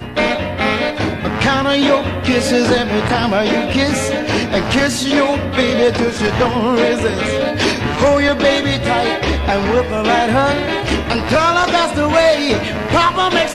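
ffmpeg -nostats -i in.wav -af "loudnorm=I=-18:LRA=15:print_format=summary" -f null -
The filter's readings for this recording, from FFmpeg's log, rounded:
Input Integrated:    -14.9 LUFS
Input True Peak:      -1.1 dBTP
Input LRA:             1.0 LU
Input Threshold:     -24.9 LUFS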